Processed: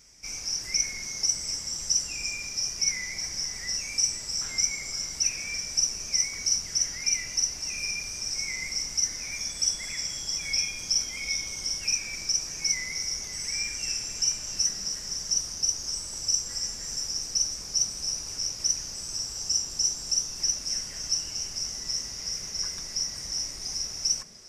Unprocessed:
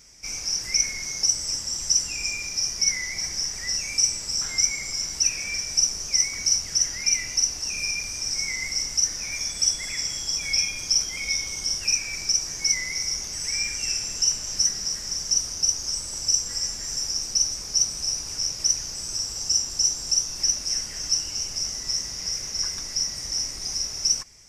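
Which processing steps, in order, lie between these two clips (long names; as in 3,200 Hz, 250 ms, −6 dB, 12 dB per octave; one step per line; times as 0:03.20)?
echo through a band-pass that steps 174 ms, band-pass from 190 Hz, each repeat 1.4 octaves, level −3 dB
level −4 dB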